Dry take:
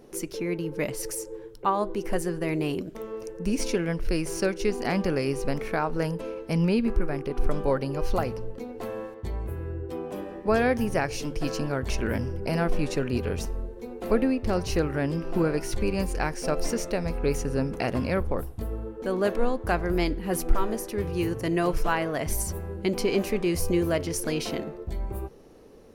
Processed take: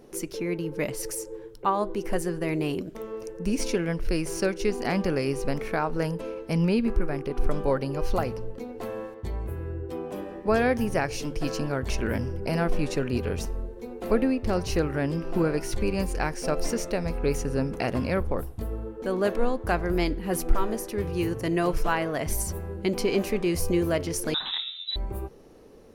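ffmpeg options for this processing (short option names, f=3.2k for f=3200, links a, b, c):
-filter_complex "[0:a]asettb=1/sr,asplit=3[a][b][c];[a]atrim=end=24.344[d];[b]atrim=start=24.34:end=24.96,asetpts=PTS-STARTPTS,afade=t=in:d=0.004:c=qsin,afade=t=out:st=0.616:d=0.004:c=qsin,lowpass=f=3.4k:t=q:w=0.5098,lowpass=f=3.4k:t=q:w=0.6013,lowpass=f=3.4k:t=q:w=0.9,lowpass=f=3.4k:t=q:w=2.563,afreqshift=-4000[e];[c]atrim=start=24.956[f];[d][e]acrossfade=d=0.004:c1=hsin:c2=qsin[g];[g][f]acrossfade=d=0.004:c1=qsin:c2=hsin"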